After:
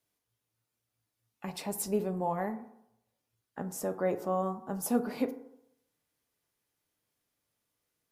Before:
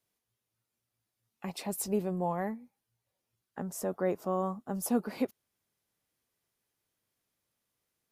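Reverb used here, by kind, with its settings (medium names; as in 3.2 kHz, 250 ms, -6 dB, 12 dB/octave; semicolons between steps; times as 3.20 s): FDN reverb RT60 0.78 s, low-frequency decay 0.9×, high-frequency decay 0.4×, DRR 8 dB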